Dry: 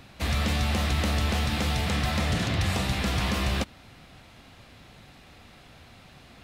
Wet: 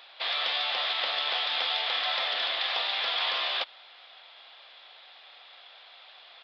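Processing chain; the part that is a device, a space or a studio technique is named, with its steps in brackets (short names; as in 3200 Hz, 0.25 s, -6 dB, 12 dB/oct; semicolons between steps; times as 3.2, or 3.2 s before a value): musical greeting card (downsampling 11025 Hz; HPF 610 Hz 24 dB/oct; bell 3400 Hz +11 dB 0.31 oct)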